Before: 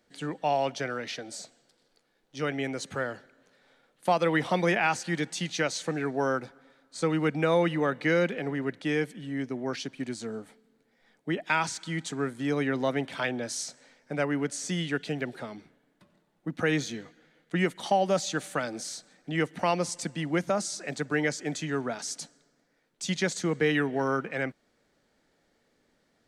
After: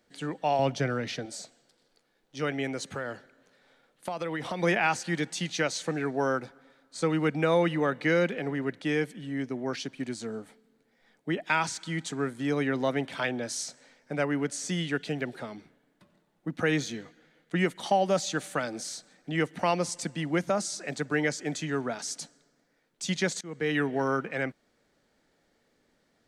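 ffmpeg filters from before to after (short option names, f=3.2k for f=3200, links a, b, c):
-filter_complex "[0:a]asettb=1/sr,asplit=3[a][b][c];[a]atrim=end=0.594[d];[b]atrim=start=0.59:end=1.26,asetpts=PTS-STARTPTS,afade=t=in:d=0.004:c=qsin,afade=t=out:st=0.666:d=0.004:c=qsin,equalizer=f=84:w=0.39:g=13[e];[c]atrim=start=1.256[f];[d][e]acrossfade=d=0.004:c1=hsin:c2=qsin[g];[g][f]acrossfade=d=0.004:c1=qsin:c2=hsin,asettb=1/sr,asplit=3[h][i][j];[h]atrim=end=2.784[k];[i]atrim=start=2.78:end=4.62,asetpts=PTS-STARTPTS,afade=t=in:d=0.004:c=qsin,afade=t=out:st=1.836:d=0.004:c=qsin,acompressor=threshold=-29dB:ratio=6:attack=3.2:release=140:knee=1:detection=peak[l];[j]atrim=start=4.616[m];[k][l]acrossfade=d=0.004:c1=hsin:c2=qsin[n];[n][m]acrossfade=d=0.004:c1=qsin:c2=hsin,asplit=2[o][p];[o]atrim=end=23.41,asetpts=PTS-STARTPTS,afade=t=out:st=23.406:d=0.004:c=hsin:silence=0.0630957[q];[p]atrim=start=23.41,asetpts=PTS-STARTPTS,afade=t=in:d=0.42:silence=0.0630957[r];[q][r]concat=n=2:v=0:a=1"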